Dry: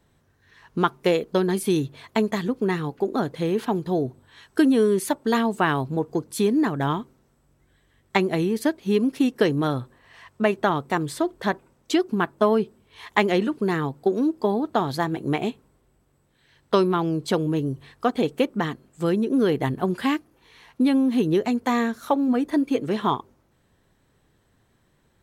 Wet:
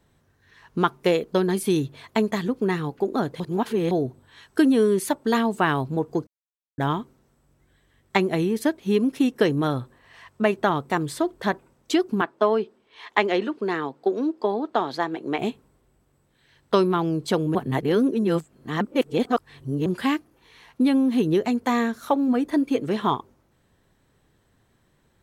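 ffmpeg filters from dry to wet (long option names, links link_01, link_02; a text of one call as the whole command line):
ffmpeg -i in.wav -filter_complex "[0:a]asettb=1/sr,asplit=3[link_01][link_02][link_03];[link_01]atrim=end=8.204[link_04];[link_02]atrim=start=8.2:end=9.76,asetpts=PTS-STARTPTS,afade=type=in:duration=0.004:curve=qsin,afade=type=out:start_time=1.556:duration=0.004:curve=qsin,bandreject=frequency=4600:width=12[link_05];[link_03]atrim=start=9.756[link_06];[link_04][link_05]acrossfade=duration=0.004:curve1=hsin:curve2=qsin[link_07];[link_07][link_06]acrossfade=duration=0.004:curve1=qsin:curve2=hsin,asettb=1/sr,asplit=3[link_08][link_09][link_10];[link_08]atrim=end=12.214[link_11];[link_09]atrim=start=12.21:end=15.39,asetpts=PTS-STARTPTS,afade=type=in:duration=0.004:curve=qsin,afade=type=out:start_time=3.176:duration=0.004:curve=qsin,acrossover=split=240 6000:gain=0.1 1 0.178[link_12][link_13][link_14];[link_12][link_13][link_14]amix=inputs=3:normalize=0[link_15];[link_10]atrim=start=15.386[link_16];[link_11][link_15]acrossfade=duration=0.004:curve1=hsin:curve2=qsin[link_17];[link_17][link_16]acrossfade=duration=0.004:curve1=qsin:curve2=hsin,asplit=7[link_18][link_19][link_20][link_21][link_22][link_23][link_24];[link_18]atrim=end=3.402[link_25];[link_19]atrim=start=3.398:end=3.912,asetpts=PTS-STARTPTS,areverse[link_26];[link_20]atrim=start=3.908:end=6.27,asetpts=PTS-STARTPTS,afade=type=out:start_time=2.358:duration=0.004:curve=hsin[link_27];[link_21]atrim=start=6.27:end=6.78,asetpts=PTS-STARTPTS,volume=0[link_28];[link_22]atrim=start=6.78:end=17.552,asetpts=PTS-STARTPTS,afade=type=in:duration=0.004:curve=hsin[link_29];[link_23]atrim=start=17.548:end=19.862,asetpts=PTS-STARTPTS,areverse[link_30];[link_24]atrim=start=19.858[link_31];[link_25][link_26]acrossfade=duration=0.004:curve1=hsin:curve2=hsin[link_32];[link_27][link_28][link_29]concat=n=3:v=0:a=1[link_33];[link_32][link_33]acrossfade=duration=0.004:curve1=hsin:curve2=hsin[link_34];[link_34][link_30]acrossfade=duration=0.004:curve1=hsin:curve2=hsin[link_35];[link_35][link_31]acrossfade=duration=0.004:curve1=hsin:curve2=hsin" out.wav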